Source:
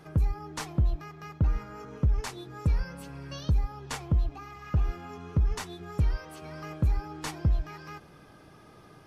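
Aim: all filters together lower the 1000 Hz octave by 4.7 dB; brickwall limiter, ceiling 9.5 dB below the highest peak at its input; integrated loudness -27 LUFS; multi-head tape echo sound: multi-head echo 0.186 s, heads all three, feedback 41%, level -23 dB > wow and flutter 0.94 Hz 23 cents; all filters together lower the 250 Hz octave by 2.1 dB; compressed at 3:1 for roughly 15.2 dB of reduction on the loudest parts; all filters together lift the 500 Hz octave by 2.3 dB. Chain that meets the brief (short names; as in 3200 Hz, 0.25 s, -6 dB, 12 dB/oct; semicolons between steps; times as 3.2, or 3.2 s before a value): bell 250 Hz -5 dB; bell 500 Hz +6.5 dB; bell 1000 Hz -8 dB; compressor 3:1, threshold -42 dBFS; limiter -36.5 dBFS; multi-head echo 0.186 s, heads all three, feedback 41%, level -23 dB; wow and flutter 0.94 Hz 23 cents; gain +20 dB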